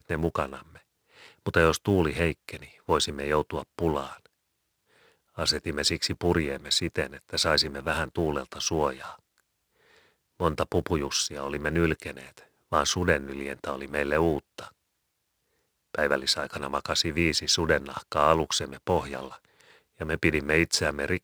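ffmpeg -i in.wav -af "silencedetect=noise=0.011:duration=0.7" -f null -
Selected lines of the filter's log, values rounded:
silence_start: 4.26
silence_end: 5.37 | silence_duration: 1.12
silence_start: 9.15
silence_end: 10.40 | silence_duration: 1.26
silence_start: 14.68
silence_end: 15.95 | silence_duration: 1.27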